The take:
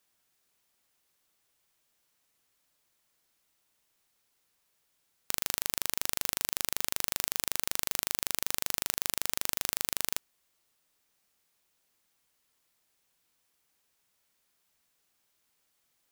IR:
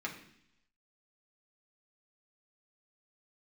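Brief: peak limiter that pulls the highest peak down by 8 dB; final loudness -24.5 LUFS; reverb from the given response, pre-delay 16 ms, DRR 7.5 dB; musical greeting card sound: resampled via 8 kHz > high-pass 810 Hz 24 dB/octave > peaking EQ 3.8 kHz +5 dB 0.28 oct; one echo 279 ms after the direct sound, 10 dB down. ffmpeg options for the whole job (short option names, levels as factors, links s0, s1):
-filter_complex "[0:a]alimiter=limit=0.355:level=0:latency=1,aecho=1:1:279:0.316,asplit=2[s0][s1];[1:a]atrim=start_sample=2205,adelay=16[s2];[s1][s2]afir=irnorm=-1:irlink=0,volume=0.316[s3];[s0][s3]amix=inputs=2:normalize=0,aresample=8000,aresample=44100,highpass=f=810:w=0.5412,highpass=f=810:w=1.3066,equalizer=f=3800:t=o:w=0.28:g=5,volume=12.6"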